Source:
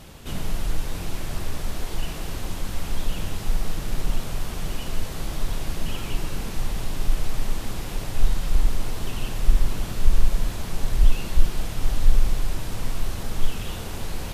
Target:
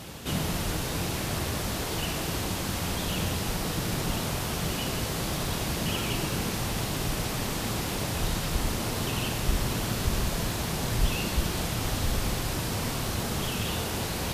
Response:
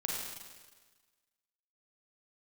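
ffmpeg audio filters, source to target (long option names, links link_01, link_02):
-filter_complex "[0:a]highpass=81,asplit=2[link_01][link_02];[link_02]equalizer=frequency=4700:width=1.5:gain=5[link_03];[1:a]atrim=start_sample=2205,highshelf=frequency=11000:gain=8[link_04];[link_03][link_04]afir=irnorm=-1:irlink=0,volume=-12dB[link_05];[link_01][link_05]amix=inputs=2:normalize=0,volume=2.5dB"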